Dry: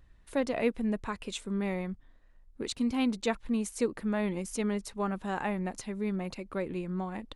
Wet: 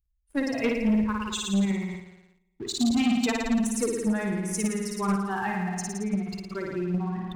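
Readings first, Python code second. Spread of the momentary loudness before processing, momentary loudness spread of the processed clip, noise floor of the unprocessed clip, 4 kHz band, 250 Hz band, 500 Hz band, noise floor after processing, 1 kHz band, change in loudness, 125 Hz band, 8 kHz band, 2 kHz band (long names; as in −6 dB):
7 LU, 9 LU, −58 dBFS, +7.5 dB, +6.5 dB, +1.5 dB, −71 dBFS, +4.5 dB, +5.5 dB, +6.5 dB, +9.5 dB, +5.5 dB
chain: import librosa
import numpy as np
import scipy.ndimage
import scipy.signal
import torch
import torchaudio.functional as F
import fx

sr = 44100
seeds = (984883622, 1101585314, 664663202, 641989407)

p1 = fx.bin_expand(x, sr, power=2.0)
p2 = fx.peak_eq(p1, sr, hz=570.0, db=-11.5, octaves=0.47)
p3 = p2 + fx.room_flutter(p2, sr, wall_m=9.6, rt60_s=1.3, dry=0)
p4 = fx.dynamic_eq(p3, sr, hz=6600.0, q=1.0, threshold_db=-54.0, ratio=4.0, max_db=4)
p5 = fx.level_steps(p4, sr, step_db=16)
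p6 = p4 + (p5 * librosa.db_to_amplitude(0.0))
p7 = fx.leveller(p6, sr, passes=2)
p8 = fx.end_taper(p7, sr, db_per_s=110.0)
y = p8 * librosa.db_to_amplitude(-2.0)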